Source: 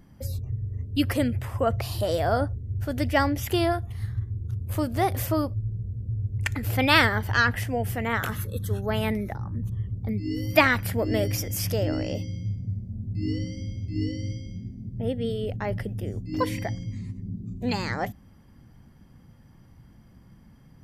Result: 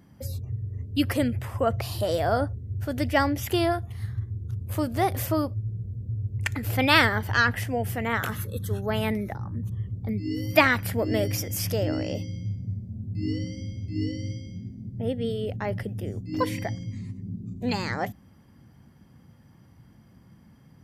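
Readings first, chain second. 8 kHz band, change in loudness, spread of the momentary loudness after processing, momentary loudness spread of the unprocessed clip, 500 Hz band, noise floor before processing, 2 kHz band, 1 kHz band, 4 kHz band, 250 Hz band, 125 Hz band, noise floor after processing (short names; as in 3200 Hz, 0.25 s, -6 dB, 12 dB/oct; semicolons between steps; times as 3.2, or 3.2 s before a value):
0.0 dB, -0.5 dB, 12 LU, 11 LU, 0.0 dB, -53 dBFS, 0.0 dB, 0.0 dB, 0.0 dB, 0.0 dB, -1.0 dB, -54 dBFS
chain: HPF 77 Hz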